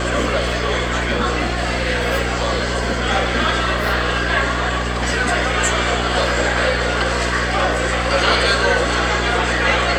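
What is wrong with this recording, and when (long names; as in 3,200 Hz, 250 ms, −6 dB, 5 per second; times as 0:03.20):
mains hum 60 Hz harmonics 7 −24 dBFS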